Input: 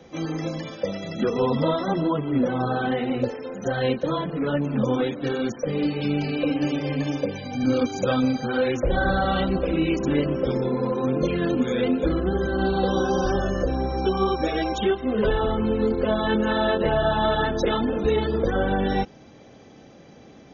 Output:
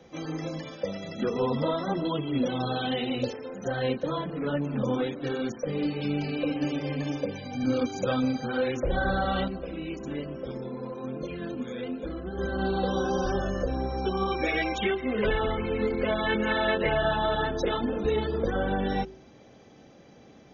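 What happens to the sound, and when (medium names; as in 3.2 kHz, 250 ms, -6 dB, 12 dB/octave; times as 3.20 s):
2.05–3.33 s: resonant high shelf 2.3 kHz +9 dB, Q 1.5
9.48–12.38 s: feedback comb 220 Hz, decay 0.19 s, harmonics odd
14.30–17.16 s: peaking EQ 2.2 kHz +14.5 dB 0.5 oct
whole clip: de-hum 54.53 Hz, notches 7; trim -4.5 dB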